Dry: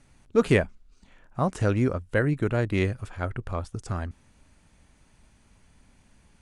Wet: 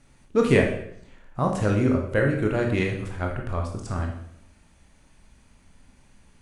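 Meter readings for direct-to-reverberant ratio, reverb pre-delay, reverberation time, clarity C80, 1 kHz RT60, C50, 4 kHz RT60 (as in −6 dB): 1.0 dB, 17 ms, 0.70 s, 9.0 dB, 0.70 s, 5.5 dB, 0.65 s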